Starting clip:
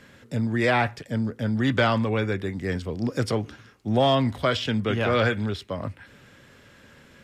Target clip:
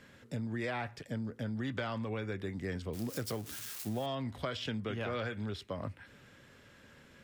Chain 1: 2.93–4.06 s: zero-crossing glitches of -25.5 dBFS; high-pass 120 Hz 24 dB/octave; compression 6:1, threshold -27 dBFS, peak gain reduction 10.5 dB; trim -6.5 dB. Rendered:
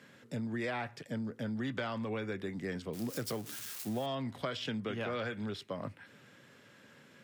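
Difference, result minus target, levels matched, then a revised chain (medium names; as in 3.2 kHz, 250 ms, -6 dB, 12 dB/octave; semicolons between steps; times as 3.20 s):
125 Hz band -3.0 dB
2.93–4.06 s: zero-crossing glitches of -25.5 dBFS; compression 6:1, threshold -27 dBFS, peak gain reduction 11 dB; trim -6.5 dB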